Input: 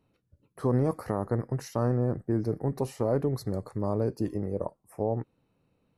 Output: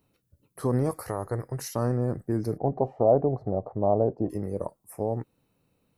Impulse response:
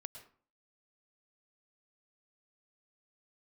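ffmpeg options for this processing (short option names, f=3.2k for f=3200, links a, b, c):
-filter_complex "[0:a]asettb=1/sr,asplit=3[a][b][c];[a]atrim=end=0.894[d];[b]atrim=start=0.89:end=1.59,asetpts=PTS-STARTPTS,afade=t=in:d=0.004:c=qsin,afade=t=out:st=0.696:d=0.004:c=qsin,equalizer=f=220:t=o:w=0.82:g=-9.5[e];[c]atrim=start=1.586[f];[d][e]acrossfade=d=0.004:c1=hsin:c2=qsin[g];[g][f]acrossfade=d=0.004:c1=qsin:c2=hsin,asplit=3[h][i][j];[h]afade=t=out:st=2.56:d=0.02[k];[i]lowpass=f=710:t=q:w=4.9,afade=t=in:st=2.56:d=0.02,afade=t=out:st=4.29:d=0.02[l];[j]afade=t=in:st=4.29:d=0.02[m];[k][l][m]amix=inputs=3:normalize=0,aemphasis=mode=production:type=50kf"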